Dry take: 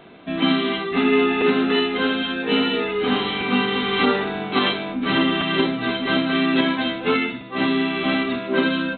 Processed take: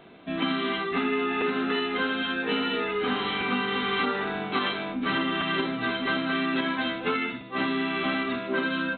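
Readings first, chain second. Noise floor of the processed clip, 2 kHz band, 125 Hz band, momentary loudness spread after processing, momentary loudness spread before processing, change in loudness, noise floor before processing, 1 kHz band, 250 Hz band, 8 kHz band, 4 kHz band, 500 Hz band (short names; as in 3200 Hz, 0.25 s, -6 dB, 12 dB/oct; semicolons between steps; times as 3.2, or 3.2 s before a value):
-37 dBFS, -4.0 dB, -7.5 dB, 2 LU, 4 LU, -6.5 dB, -32 dBFS, -4.0 dB, -8.0 dB, n/a, -7.0 dB, -8.0 dB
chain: dynamic EQ 1400 Hz, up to +6 dB, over -35 dBFS, Q 1.2; compressor, threshold -18 dBFS, peak gain reduction 6.5 dB; gain -5 dB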